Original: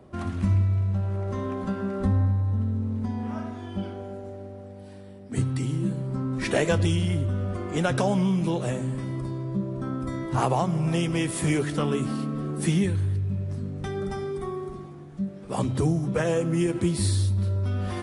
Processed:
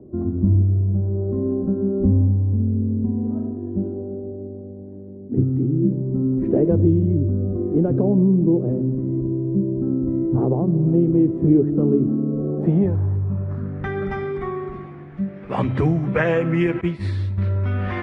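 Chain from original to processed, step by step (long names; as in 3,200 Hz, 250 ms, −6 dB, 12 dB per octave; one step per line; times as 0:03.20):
0:16.81–0:17.38: downward expander −18 dBFS
low-pass filter sweep 350 Hz → 2,100 Hz, 0:12.10–0:14.02
level +4.5 dB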